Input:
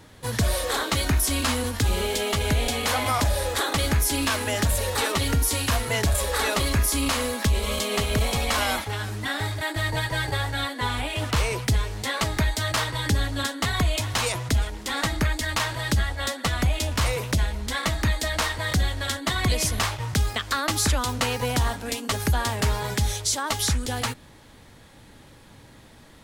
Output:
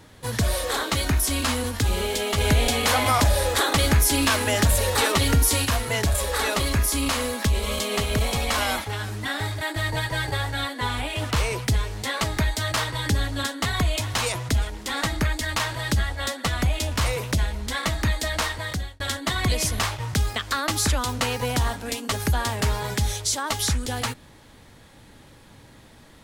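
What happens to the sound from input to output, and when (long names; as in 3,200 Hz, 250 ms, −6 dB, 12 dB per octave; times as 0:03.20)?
0:02.38–0:05.65: clip gain +3.5 dB
0:18.30–0:19.00: fade out equal-power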